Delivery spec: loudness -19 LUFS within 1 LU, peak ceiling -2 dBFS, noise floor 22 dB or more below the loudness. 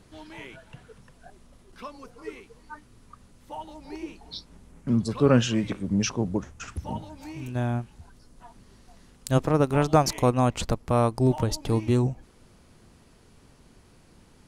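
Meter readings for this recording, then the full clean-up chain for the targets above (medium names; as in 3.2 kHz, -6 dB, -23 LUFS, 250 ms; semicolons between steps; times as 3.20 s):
loudness -25.0 LUFS; peak level -6.0 dBFS; loudness target -19.0 LUFS
-> trim +6 dB; peak limiter -2 dBFS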